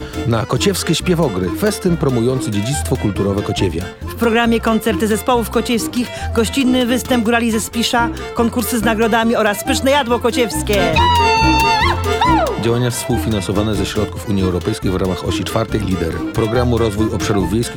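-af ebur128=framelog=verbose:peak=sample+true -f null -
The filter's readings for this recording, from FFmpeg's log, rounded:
Integrated loudness:
  I:         -16.0 LUFS
  Threshold: -26.0 LUFS
Loudness range:
  LRA:         4.1 LU
  Threshold: -35.9 LUFS
  LRA low:   -17.9 LUFS
  LRA high:  -13.8 LUFS
Sample peak:
  Peak:       -3.7 dBFS
True peak:
  Peak:       -3.5 dBFS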